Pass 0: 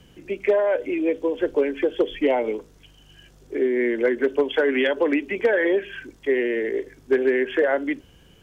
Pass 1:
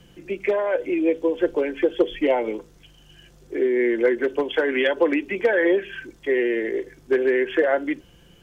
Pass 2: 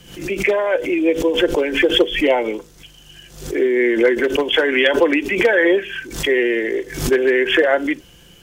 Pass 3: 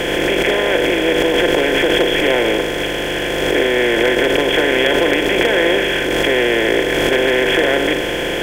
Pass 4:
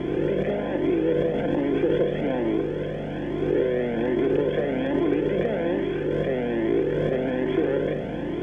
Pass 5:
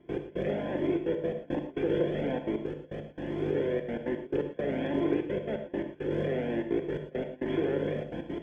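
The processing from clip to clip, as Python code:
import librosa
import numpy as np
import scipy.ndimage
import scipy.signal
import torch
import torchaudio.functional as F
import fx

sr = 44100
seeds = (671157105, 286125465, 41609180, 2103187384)

y1 = x + 0.36 * np.pad(x, (int(5.8 * sr / 1000.0), 0))[:len(x)]
y2 = fx.high_shelf(y1, sr, hz=2300.0, db=9.0)
y2 = fx.pre_swell(y2, sr, db_per_s=94.0)
y2 = F.gain(torch.from_numpy(y2), 3.5).numpy()
y3 = fx.bin_compress(y2, sr, power=0.2)
y3 = F.gain(torch.from_numpy(y3), -7.5).numpy()
y4 = fx.bandpass_q(y3, sr, hz=190.0, q=1.3)
y4 = fx.comb_cascade(y4, sr, direction='rising', hz=1.2)
y4 = F.gain(torch.from_numpy(y4), 6.0).numpy()
y5 = fx.step_gate(y4, sr, bpm=170, pattern='.x..xxxxxxx.x.x.', floor_db=-24.0, edge_ms=4.5)
y5 = fx.rev_gated(y5, sr, seeds[0], gate_ms=140, shape='flat', drr_db=6.0)
y5 = F.gain(torch.from_numpy(y5), -6.5).numpy()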